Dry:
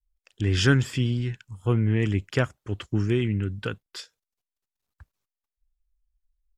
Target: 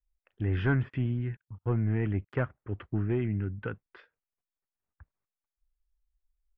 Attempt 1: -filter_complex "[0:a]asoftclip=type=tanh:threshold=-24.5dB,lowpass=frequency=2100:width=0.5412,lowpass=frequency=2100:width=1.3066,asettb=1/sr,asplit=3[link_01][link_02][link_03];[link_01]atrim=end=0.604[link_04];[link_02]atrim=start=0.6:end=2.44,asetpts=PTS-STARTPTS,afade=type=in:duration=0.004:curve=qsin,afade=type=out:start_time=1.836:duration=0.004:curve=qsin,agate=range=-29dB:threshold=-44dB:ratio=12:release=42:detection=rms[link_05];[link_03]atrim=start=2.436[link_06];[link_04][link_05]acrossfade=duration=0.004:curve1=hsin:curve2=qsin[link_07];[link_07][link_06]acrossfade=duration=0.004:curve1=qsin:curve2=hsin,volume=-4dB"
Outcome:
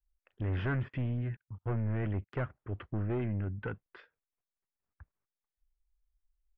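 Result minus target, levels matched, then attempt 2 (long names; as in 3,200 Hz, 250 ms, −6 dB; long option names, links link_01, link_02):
soft clipping: distortion +9 dB
-filter_complex "[0:a]asoftclip=type=tanh:threshold=-14.5dB,lowpass=frequency=2100:width=0.5412,lowpass=frequency=2100:width=1.3066,asettb=1/sr,asplit=3[link_01][link_02][link_03];[link_01]atrim=end=0.604[link_04];[link_02]atrim=start=0.6:end=2.44,asetpts=PTS-STARTPTS,afade=type=in:duration=0.004:curve=qsin,afade=type=out:start_time=1.836:duration=0.004:curve=qsin,agate=range=-29dB:threshold=-44dB:ratio=12:release=42:detection=rms[link_05];[link_03]atrim=start=2.436[link_06];[link_04][link_05]acrossfade=duration=0.004:curve1=hsin:curve2=qsin[link_07];[link_07][link_06]acrossfade=duration=0.004:curve1=qsin:curve2=hsin,volume=-4dB"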